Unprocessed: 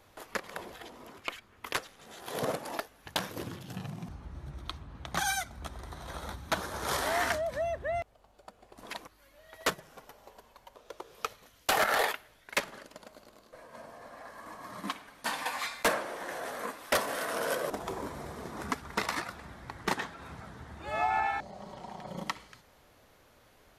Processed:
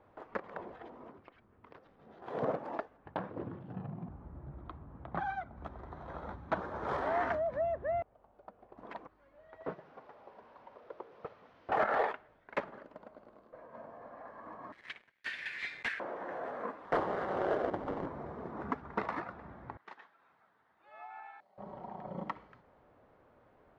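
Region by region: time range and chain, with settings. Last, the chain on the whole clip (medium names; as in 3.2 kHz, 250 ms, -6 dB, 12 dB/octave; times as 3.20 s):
1.11–2.22 s: bass shelf 470 Hz +9 dB + compression 5:1, threshold -41 dBFS + four-pole ladder low-pass 6.4 kHz, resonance 35%
2.97–5.57 s: Savitzky-Golay filter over 15 samples + treble shelf 2.1 kHz -9 dB
9.64–11.72 s: one-bit delta coder 32 kbps, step -48.5 dBFS + high-pass 170 Hz 6 dB/octave
14.72–16.00 s: steep high-pass 1.8 kHz 48 dB/octave + waveshaping leveller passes 3
16.85–18.06 s: square wave that keeps the level + Butterworth band-stop 2.5 kHz, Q 6.7 + ring modulator 100 Hz
19.77–21.58 s: low-pass 4.9 kHz + differentiator
whole clip: low-pass 1.2 kHz 12 dB/octave; bass shelf 73 Hz -10.5 dB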